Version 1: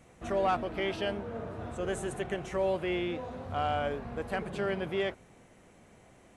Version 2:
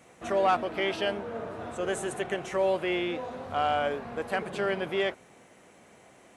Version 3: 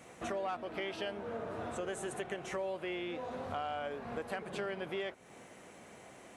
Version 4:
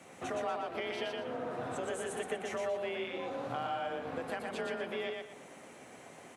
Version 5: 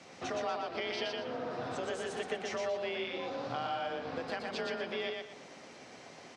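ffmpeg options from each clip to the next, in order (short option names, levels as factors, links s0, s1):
-af "highpass=f=330:p=1,volume=1.78"
-af "acompressor=threshold=0.0112:ratio=4,volume=1.19"
-af "afreqshift=31,aecho=1:1:119|238|357|476:0.708|0.205|0.0595|0.0173"
-af "lowpass=f=5000:t=q:w=3.7"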